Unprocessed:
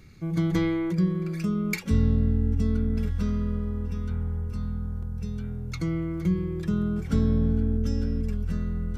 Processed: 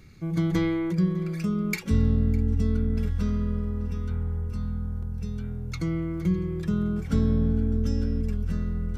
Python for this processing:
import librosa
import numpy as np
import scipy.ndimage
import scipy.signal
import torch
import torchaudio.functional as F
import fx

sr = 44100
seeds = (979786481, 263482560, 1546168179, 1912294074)

y = x + 10.0 ** (-21.5 / 20.0) * np.pad(x, (int(605 * sr / 1000.0), 0))[:len(x)]